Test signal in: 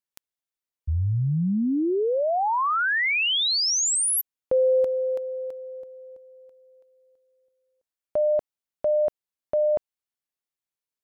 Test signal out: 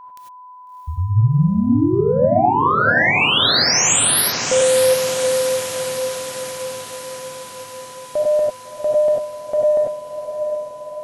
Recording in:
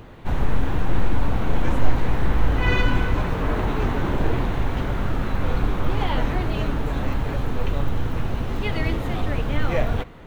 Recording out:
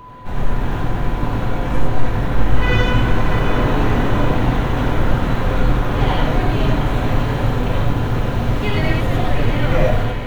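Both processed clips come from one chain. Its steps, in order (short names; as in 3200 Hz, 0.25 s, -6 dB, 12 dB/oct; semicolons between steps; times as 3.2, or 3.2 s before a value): bell 85 Hz -4.5 dB 0.39 oct; AGC gain up to 5 dB; in parallel at -4 dB: soft clip -12 dBFS; on the sum: whine 1000 Hz -32 dBFS; on a send: diffused feedback echo 0.676 s, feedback 64%, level -8 dB; on the sum: non-linear reverb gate 0.12 s rising, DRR -1.5 dB; gain -6 dB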